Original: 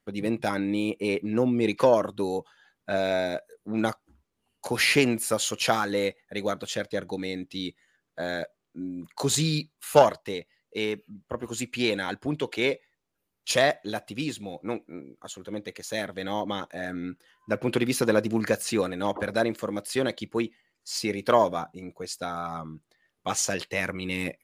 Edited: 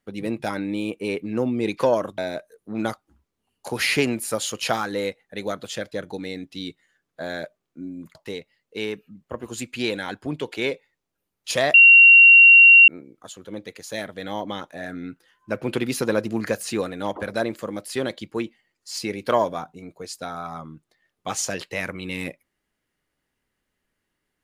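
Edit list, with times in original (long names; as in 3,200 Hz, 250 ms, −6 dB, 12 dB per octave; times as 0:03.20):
0:02.18–0:03.17: remove
0:09.14–0:10.15: remove
0:13.74–0:14.88: beep over 2,750 Hz −6.5 dBFS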